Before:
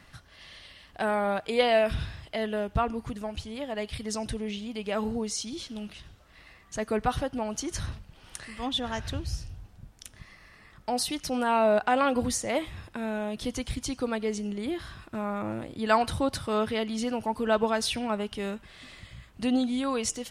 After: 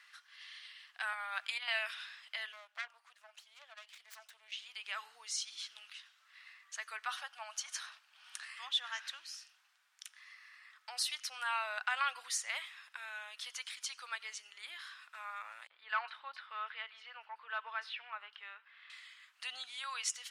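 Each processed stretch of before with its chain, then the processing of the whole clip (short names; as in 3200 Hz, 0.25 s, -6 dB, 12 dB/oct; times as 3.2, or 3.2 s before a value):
1.13–1.68 HPF 550 Hz 24 dB/oct + negative-ratio compressor -30 dBFS, ratio -0.5
2.52–4.52 self-modulated delay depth 0.48 ms + ladder high-pass 520 Hz, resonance 60%
7.11–8.56 resonant low shelf 510 Hz -8 dB, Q 3 + notch 2000 Hz, Q 15
15.67–18.9 three bands offset in time highs, mids, lows 30/60 ms, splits 190/4800 Hz + hard clip -14 dBFS + air absorption 370 m
whole clip: HPF 1300 Hz 24 dB/oct; high shelf 7800 Hz -9 dB; gain -1.5 dB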